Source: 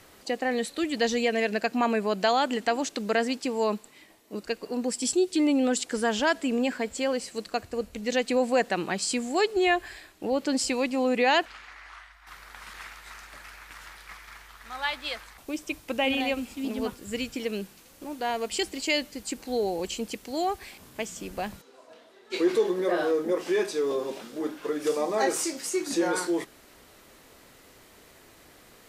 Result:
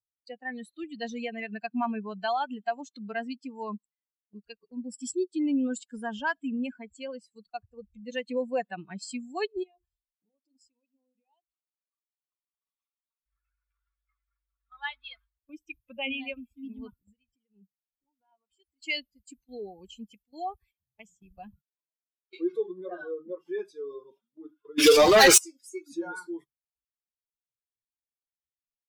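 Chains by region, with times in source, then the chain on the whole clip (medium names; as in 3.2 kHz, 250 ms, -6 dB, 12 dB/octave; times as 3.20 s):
9.63–13.26 s: compression 4:1, threshold -36 dBFS + peaking EQ 1.7 kHz -14.5 dB 0.89 oct + hum notches 50/100/150/200/250/300/350/400/450/500 Hz
16.94–18.82 s: peaking EQ 5.1 kHz -2.5 dB 1.7 oct + compression 3:1, threshold -39 dBFS
24.78–25.38 s: jump at every zero crossing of -39 dBFS + frequency weighting D + waveshaping leveller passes 5
whole clip: expander on every frequency bin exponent 2; spectral noise reduction 9 dB; gate -60 dBFS, range -11 dB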